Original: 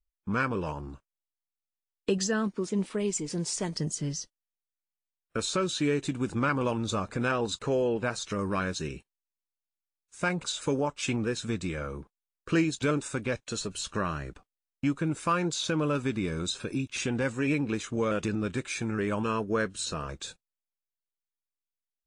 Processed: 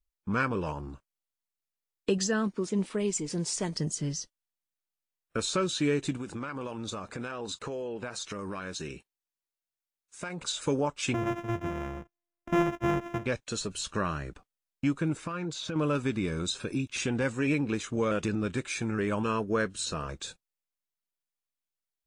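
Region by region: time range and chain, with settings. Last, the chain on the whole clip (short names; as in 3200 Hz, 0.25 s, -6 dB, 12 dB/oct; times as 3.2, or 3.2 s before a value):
6.17–10.41 low shelf 170 Hz -8 dB + compressor 12:1, threshold -32 dBFS
11.14–13.26 sample sorter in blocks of 128 samples + running mean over 10 samples
15.17–15.76 compressor 12:1, threshold -30 dBFS + high shelf 6300 Hz -12 dB + comb 6.4 ms, depth 32%
whole clip: dry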